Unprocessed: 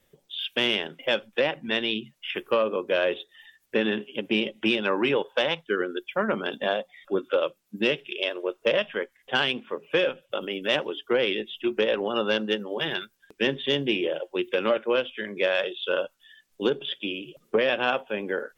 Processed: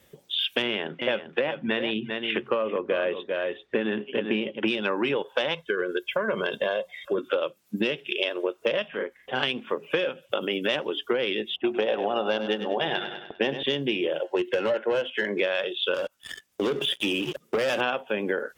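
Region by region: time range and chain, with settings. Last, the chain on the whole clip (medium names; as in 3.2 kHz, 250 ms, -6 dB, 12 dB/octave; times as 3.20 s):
0.62–4.68 s: low-pass 2.6 kHz + delay 395 ms -11 dB
5.54–7.18 s: comb 1.9 ms, depth 71% + compression 2.5:1, threshold -26 dBFS
8.88–9.43 s: treble shelf 2.8 kHz -10.5 dB + compression 1.5:1, threshold -46 dBFS + doubling 39 ms -3 dB
11.56–13.63 s: level-controlled noise filter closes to 1.1 kHz, open at -21.5 dBFS + peaking EQ 730 Hz +12.5 dB 0.58 oct + feedback delay 100 ms, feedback 44%, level -12 dB
14.24–15.40 s: overdrive pedal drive 17 dB, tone 1.3 kHz, clips at -12 dBFS + comb of notches 1.2 kHz
15.94–17.81 s: waveshaping leveller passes 3 + band-stop 4.2 kHz, Q 13 + compression 2:1, threshold -36 dBFS
whole clip: high-pass 44 Hz; compression, threshold -31 dBFS; trim +8 dB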